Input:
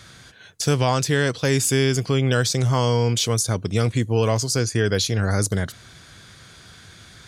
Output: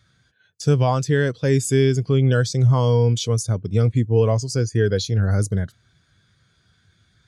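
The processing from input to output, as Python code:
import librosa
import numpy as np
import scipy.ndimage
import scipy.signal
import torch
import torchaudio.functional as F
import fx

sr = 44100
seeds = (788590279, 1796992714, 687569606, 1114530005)

y = fx.spectral_expand(x, sr, expansion=1.5)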